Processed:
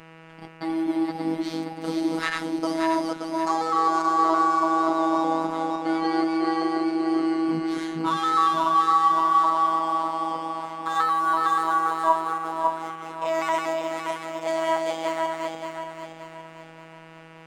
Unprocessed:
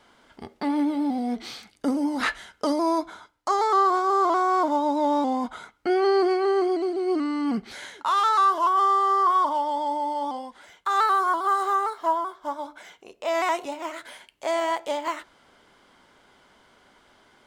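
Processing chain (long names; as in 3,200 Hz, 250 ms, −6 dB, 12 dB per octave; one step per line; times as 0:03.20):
feedback delay that plays each chunk backwards 288 ms, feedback 63%, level −2 dB
hum with harmonics 120 Hz, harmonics 24, −45 dBFS −3 dB per octave
phases set to zero 162 Hz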